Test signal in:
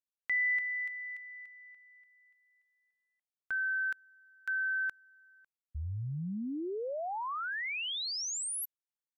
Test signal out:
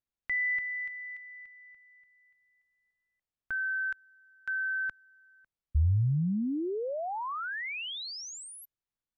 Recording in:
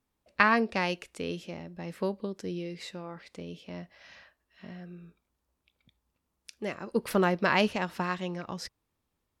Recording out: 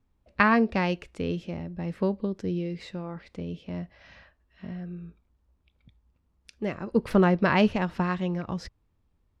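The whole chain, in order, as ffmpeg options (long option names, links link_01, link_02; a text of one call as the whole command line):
ffmpeg -i in.wav -af "aemphasis=mode=reproduction:type=bsi,volume=1.5dB" out.wav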